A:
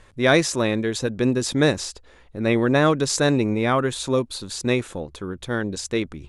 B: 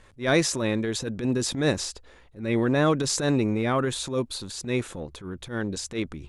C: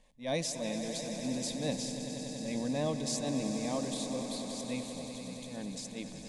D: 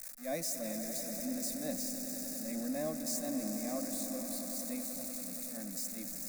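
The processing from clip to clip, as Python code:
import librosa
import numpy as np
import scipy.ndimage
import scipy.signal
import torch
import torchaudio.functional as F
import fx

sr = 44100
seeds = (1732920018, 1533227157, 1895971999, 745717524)

y1 = fx.transient(x, sr, attack_db=-12, sustain_db=2)
y1 = y1 * 10.0 ** (-2.5 / 20.0)
y2 = fx.fixed_phaser(y1, sr, hz=370.0, stages=6)
y2 = fx.echo_swell(y2, sr, ms=95, loudest=5, wet_db=-12.0)
y2 = y2 * 10.0 ** (-8.5 / 20.0)
y3 = y2 + 0.5 * 10.0 ** (-29.5 / 20.0) * np.diff(np.sign(y2), prepend=np.sign(y2[:1]))
y3 = fx.fixed_phaser(y3, sr, hz=630.0, stages=8)
y3 = y3 * 10.0 ** (-2.5 / 20.0)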